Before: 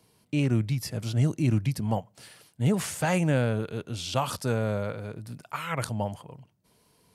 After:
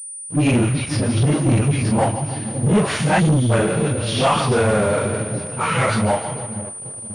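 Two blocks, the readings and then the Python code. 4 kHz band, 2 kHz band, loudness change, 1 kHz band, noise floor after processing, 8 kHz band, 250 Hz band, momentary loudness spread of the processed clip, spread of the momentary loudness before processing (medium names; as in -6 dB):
+10.5 dB, +11.5 dB, +9.5 dB, +12.5 dB, -33 dBFS, +14.0 dB, +9.5 dB, 8 LU, 10 LU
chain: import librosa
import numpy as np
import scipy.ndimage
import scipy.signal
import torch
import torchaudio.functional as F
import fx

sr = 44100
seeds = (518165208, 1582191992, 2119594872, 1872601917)

p1 = fx.phase_scramble(x, sr, seeds[0], window_ms=100)
p2 = np.where(np.abs(p1) >= 10.0 ** (-35.0 / 20.0), p1, 0.0)
p3 = p1 + (p2 * 10.0 ** (-6.0 / 20.0))
p4 = fx.echo_split(p3, sr, split_hz=530.0, low_ms=538, high_ms=152, feedback_pct=52, wet_db=-12.0)
p5 = fx.spec_erase(p4, sr, start_s=3.11, length_s=0.32, low_hz=380.0, high_hz=3000.0)
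p6 = fx.dispersion(p5, sr, late='highs', ms=99.0, hz=320.0)
p7 = fx.leveller(p6, sr, passes=3)
p8 = fx.low_shelf(p7, sr, hz=130.0, db=-5.5)
y = fx.pwm(p8, sr, carrier_hz=9300.0)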